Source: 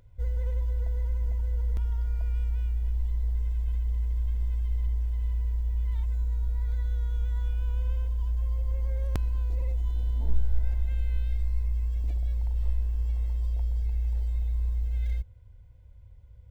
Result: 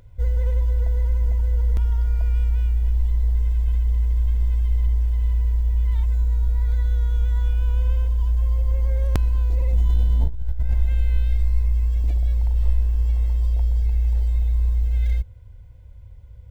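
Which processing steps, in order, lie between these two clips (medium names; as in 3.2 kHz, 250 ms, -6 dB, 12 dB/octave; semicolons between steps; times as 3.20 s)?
9.73–10.74 s: compressor with a negative ratio -27 dBFS, ratio -1; trim +8 dB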